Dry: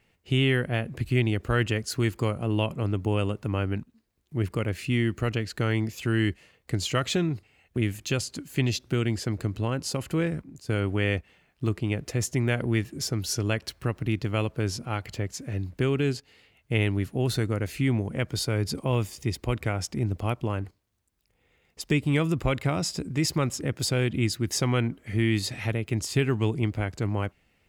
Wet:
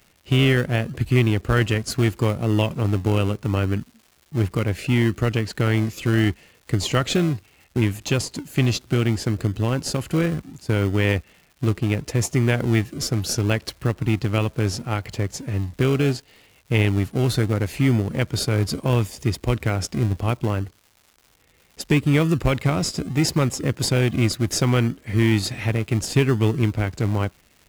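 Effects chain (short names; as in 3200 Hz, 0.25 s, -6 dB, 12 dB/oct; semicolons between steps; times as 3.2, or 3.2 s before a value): in parallel at -10.5 dB: decimation with a swept rate 39×, swing 60% 0.71 Hz; on the sum: crackle 320/s -46 dBFS; gain +4 dB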